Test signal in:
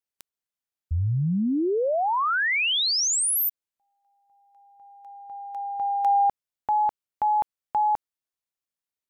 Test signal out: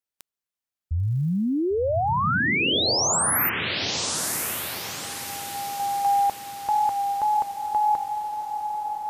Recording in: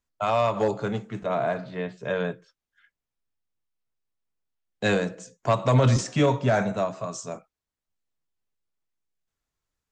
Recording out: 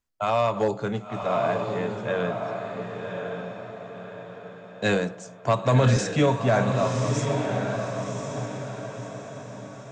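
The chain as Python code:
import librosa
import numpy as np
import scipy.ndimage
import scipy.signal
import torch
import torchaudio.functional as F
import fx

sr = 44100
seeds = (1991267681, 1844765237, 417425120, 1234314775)

y = fx.echo_diffused(x, sr, ms=1077, feedback_pct=45, wet_db=-4.5)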